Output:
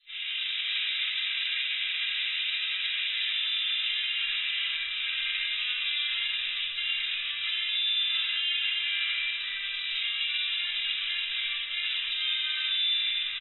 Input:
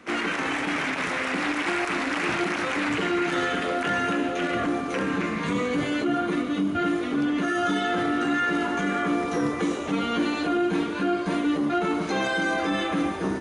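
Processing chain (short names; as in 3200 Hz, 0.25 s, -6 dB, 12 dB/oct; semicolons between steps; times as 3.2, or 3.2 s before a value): minimum comb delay 2.5 ms; tilt -2 dB/oct; doubler 48 ms -9 dB; on a send: feedback echo 0.148 s, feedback 46%, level -21.5 dB; on the sum: AGC gain up to 14 dB; inverse Chebyshev high-pass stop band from 890 Hz, stop band 70 dB; high shelf 6200 Hz -8 dB; harmoniser -4 st -12 dB; shoebox room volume 700 m³, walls mixed, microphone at 9.8 m; limiter -19 dBFS, peak gain reduction 11 dB; AAC 16 kbps 24000 Hz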